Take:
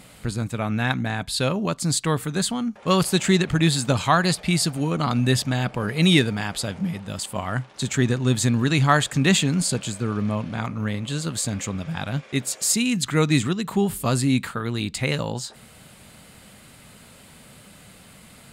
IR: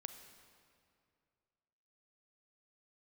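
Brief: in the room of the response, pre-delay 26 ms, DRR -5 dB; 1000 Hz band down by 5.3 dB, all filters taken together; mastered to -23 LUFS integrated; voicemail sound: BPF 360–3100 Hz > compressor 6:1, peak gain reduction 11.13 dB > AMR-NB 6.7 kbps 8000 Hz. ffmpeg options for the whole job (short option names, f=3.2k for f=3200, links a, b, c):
-filter_complex "[0:a]equalizer=f=1k:t=o:g=-7,asplit=2[a][b];[1:a]atrim=start_sample=2205,adelay=26[c];[b][c]afir=irnorm=-1:irlink=0,volume=9dB[d];[a][d]amix=inputs=2:normalize=0,highpass=360,lowpass=3.1k,acompressor=threshold=-22dB:ratio=6,volume=7dB" -ar 8000 -c:a libopencore_amrnb -b:a 6700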